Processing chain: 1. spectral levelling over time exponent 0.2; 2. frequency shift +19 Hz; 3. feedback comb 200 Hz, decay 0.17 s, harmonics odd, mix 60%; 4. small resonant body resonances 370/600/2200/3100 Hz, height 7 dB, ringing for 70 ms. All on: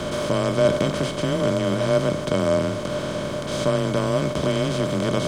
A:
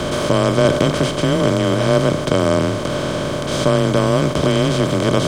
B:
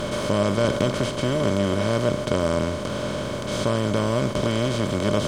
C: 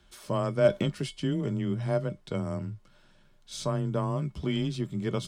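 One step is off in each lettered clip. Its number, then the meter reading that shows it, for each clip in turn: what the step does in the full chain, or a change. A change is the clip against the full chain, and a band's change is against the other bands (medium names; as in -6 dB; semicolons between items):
3, 500 Hz band -2.0 dB; 2, 500 Hz band -2.0 dB; 1, 125 Hz band +5.5 dB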